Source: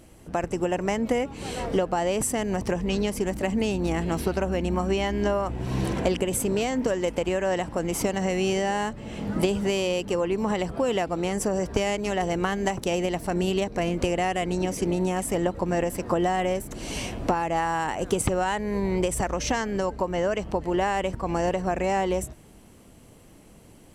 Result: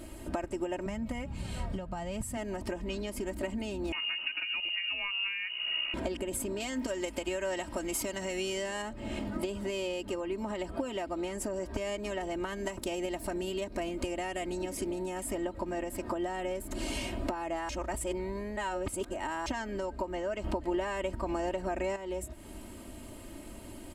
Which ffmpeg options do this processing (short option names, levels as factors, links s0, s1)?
-filter_complex "[0:a]asettb=1/sr,asplit=3[s0][s1][s2];[s0]atrim=end=0.864[s3];[s1]atrim=start=0.86:end=2.37,asetpts=PTS-STARTPTS,afade=t=in:d=0.004:c=qsin,afade=t=out:st=1.506:d=0.004:c=qsin,lowshelf=f=220:t=q:w=3:g=10[s4];[s2]atrim=start=2.366[s5];[s3][s4]acrossfade=d=0.004:c1=hsin:c2=qsin[s6];[s6][s5]acrossfade=d=0.004:c1=qsin:c2=hsin,asettb=1/sr,asplit=3[s7][s8][s9];[s7]atrim=end=3.924[s10];[s8]atrim=start=3.92:end=5.94,asetpts=PTS-STARTPTS,afade=t=in:d=0.004:c=qsin,afade=t=out:st=2.016:d=0.004:c=qsin,lowpass=f=2600:t=q:w=0.5098,lowpass=f=2600:t=q:w=0.6013,lowpass=f=2600:t=q:w=0.9,lowpass=f=2600:t=q:w=2.563,afreqshift=-3000[s11];[s9]atrim=start=5.936[s12];[s10][s11]acrossfade=d=0.004:c1=hsin:c2=qsin[s13];[s13][s12]acrossfade=d=0.004:c1=qsin:c2=hsin,asettb=1/sr,asplit=3[s14][s15][s16];[s14]atrim=end=6.604[s17];[s15]atrim=start=6.6:end=8.82,asetpts=PTS-STARTPTS,afade=t=in:d=0.004:c=qsin,afade=t=out:st=2.216:d=0.004:c=qsin,highshelf=f=2100:g=9[s18];[s16]atrim=start=8.816[s19];[s17][s18]acrossfade=d=0.004:c1=hsin:c2=qsin[s20];[s20][s19]acrossfade=d=0.004:c1=qsin:c2=hsin,asettb=1/sr,asplit=3[s21][s22][s23];[s21]atrim=end=12.484[s24];[s22]atrim=start=12.48:end=15.23,asetpts=PTS-STARTPTS,afade=t=in:d=0.004:c=qsin,afade=t=out:st=2.746:d=0.004:c=qsin,highshelf=f=6400:g=5[s25];[s23]atrim=start=15.226[s26];[s24][s25]acrossfade=d=0.004:c1=hsin:c2=qsin[s27];[s27][s26]acrossfade=d=0.004:c1=qsin:c2=hsin,asplit=5[s28][s29][s30][s31][s32];[s28]atrim=end=17.692[s33];[s29]atrim=start=17.688:end=19.462,asetpts=PTS-STARTPTS,areverse[s34];[s30]atrim=start=19.458:end=20.442[s35];[s31]atrim=start=20.438:end=21.962,asetpts=PTS-STARTPTS,volume=3.55[s36];[s32]atrim=start=21.958[s37];[s33][s34]acrossfade=d=0.004:c1=hsin:c2=hsin[s38];[s38][s35]acrossfade=d=0.004:c1=hsin:c2=hsin[s39];[s39][s36]acrossfade=d=0.004:c1=hsin:c2=hsin[s40];[s40][s37]acrossfade=d=0.004:c1=hsin:c2=hsin,acompressor=threshold=0.0126:ratio=6,bandreject=f=5900:w=7.4,aecho=1:1:3.2:0.73,volume=1.5"